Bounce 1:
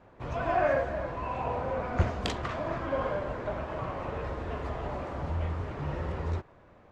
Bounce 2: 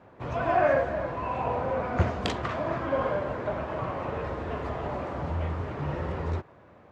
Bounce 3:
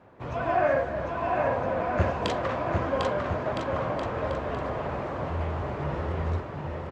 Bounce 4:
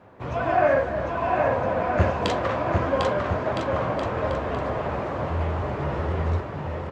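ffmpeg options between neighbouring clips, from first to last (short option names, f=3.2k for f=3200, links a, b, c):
-af "highpass=78,highshelf=f=4.3k:g=-5,volume=3.5dB"
-af "aecho=1:1:750|1312|1734|2051|2288:0.631|0.398|0.251|0.158|0.1,volume=-1dB"
-af "flanger=delay=9.4:depth=1.5:regen=-68:speed=1.9:shape=sinusoidal,volume=8dB"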